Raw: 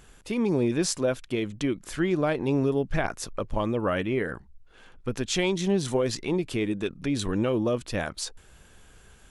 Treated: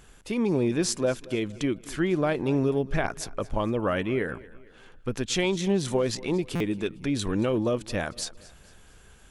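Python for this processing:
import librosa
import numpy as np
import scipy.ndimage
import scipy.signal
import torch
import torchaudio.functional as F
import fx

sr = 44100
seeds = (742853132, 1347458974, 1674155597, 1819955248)

y = fx.echo_feedback(x, sr, ms=228, feedback_pct=43, wet_db=-20.5)
y = fx.buffer_glitch(y, sr, at_s=(6.55,), block=256, repeats=8)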